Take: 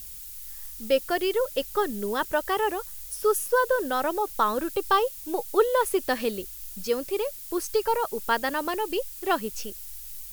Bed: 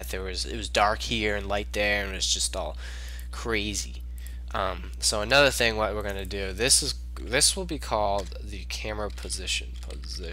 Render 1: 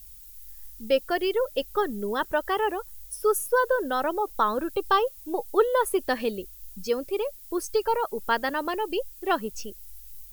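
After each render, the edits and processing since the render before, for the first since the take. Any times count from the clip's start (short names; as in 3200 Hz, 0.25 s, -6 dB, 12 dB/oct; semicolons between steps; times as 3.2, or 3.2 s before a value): denoiser 10 dB, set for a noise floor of -41 dBFS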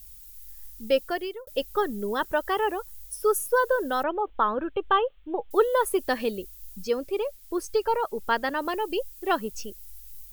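1.01–1.47 fade out; 4.03–5.51 elliptic low-pass 3300 Hz; 6.84–8.62 high shelf 6900 Hz -6 dB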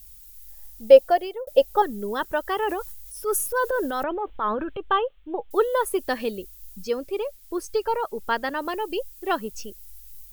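0.51–1.82 band shelf 660 Hz +12 dB 1 oct; 2.63–4.81 transient shaper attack -7 dB, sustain +6 dB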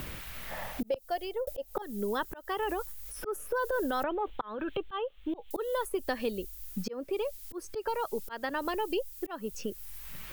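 auto swell 0.771 s; three-band squash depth 100%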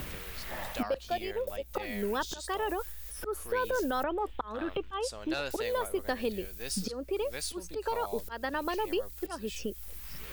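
add bed -16.5 dB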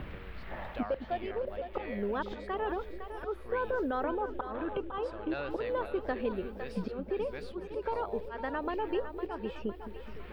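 air absorption 460 m; on a send: split-band echo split 410 Hz, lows 0.213 s, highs 0.507 s, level -9.5 dB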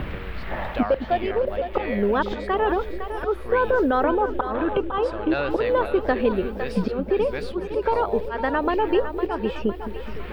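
gain +12 dB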